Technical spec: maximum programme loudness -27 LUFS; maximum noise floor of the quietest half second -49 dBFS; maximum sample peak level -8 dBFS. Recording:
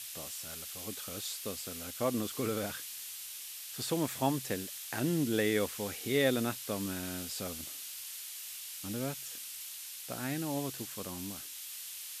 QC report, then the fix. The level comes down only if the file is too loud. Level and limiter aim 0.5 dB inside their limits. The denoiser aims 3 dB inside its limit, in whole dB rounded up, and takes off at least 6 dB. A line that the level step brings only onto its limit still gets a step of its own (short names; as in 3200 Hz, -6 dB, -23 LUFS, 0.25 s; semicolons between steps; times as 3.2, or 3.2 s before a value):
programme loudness -36.0 LUFS: OK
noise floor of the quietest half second -45 dBFS: fail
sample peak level -14.5 dBFS: OK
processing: denoiser 7 dB, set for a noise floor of -45 dBFS